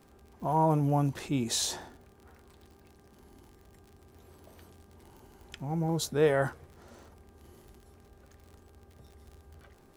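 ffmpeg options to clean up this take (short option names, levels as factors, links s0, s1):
-af "adeclick=t=4,bandreject=f=397.8:t=h:w=4,bandreject=f=795.6:t=h:w=4,bandreject=f=1193.4:t=h:w=4,bandreject=f=1591.2:t=h:w=4"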